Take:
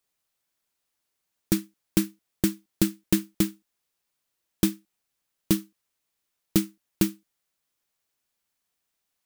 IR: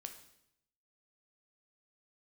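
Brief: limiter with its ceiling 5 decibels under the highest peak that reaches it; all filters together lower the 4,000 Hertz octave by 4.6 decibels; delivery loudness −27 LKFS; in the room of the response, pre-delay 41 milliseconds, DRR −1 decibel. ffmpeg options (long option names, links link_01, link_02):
-filter_complex "[0:a]equalizer=frequency=4000:width_type=o:gain=-6,alimiter=limit=-11.5dB:level=0:latency=1,asplit=2[link_01][link_02];[1:a]atrim=start_sample=2205,adelay=41[link_03];[link_02][link_03]afir=irnorm=-1:irlink=0,volume=5.5dB[link_04];[link_01][link_04]amix=inputs=2:normalize=0,volume=0.5dB"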